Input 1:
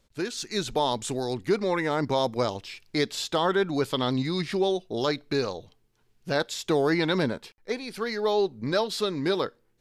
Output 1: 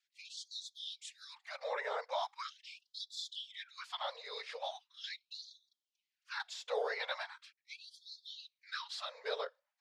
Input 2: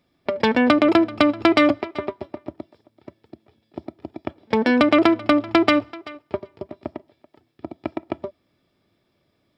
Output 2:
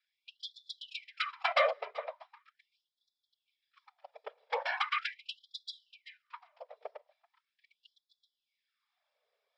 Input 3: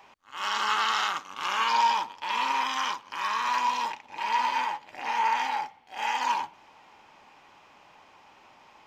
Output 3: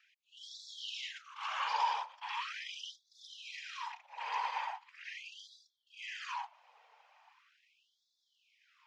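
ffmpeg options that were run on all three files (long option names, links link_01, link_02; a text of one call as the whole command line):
ffmpeg -i in.wav -af "afftfilt=real='hypot(re,im)*cos(2*PI*random(0))':imag='hypot(re,im)*sin(2*PI*random(1))':win_size=512:overlap=0.75,highpass=150,lowpass=5700,afftfilt=real='re*gte(b*sr/1024,410*pow(3400/410,0.5+0.5*sin(2*PI*0.4*pts/sr)))':imag='im*gte(b*sr/1024,410*pow(3400/410,0.5+0.5*sin(2*PI*0.4*pts/sr)))':win_size=1024:overlap=0.75,volume=-3.5dB" out.wav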